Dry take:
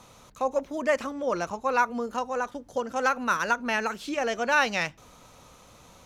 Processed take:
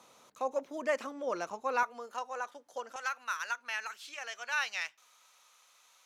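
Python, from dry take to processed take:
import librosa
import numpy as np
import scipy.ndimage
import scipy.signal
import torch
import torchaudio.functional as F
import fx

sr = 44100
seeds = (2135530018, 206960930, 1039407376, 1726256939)

y = fx.highpass(x, sr, hz=fx.steps((0.0, 280.0), (1.83, 640.0), (2.96, 1400.0)), slope=12)
y = y * 10.0 ** (-6.5 / 20.0)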